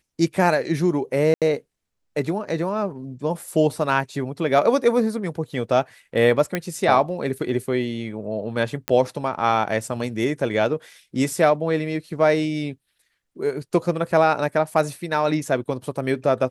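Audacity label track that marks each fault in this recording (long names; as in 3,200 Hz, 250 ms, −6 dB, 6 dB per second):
1.340000	1.420000	drop-out 77 ms
6.550000	6.550000	click −9 dBFS
8.880000	8.880000	click −6 dBFS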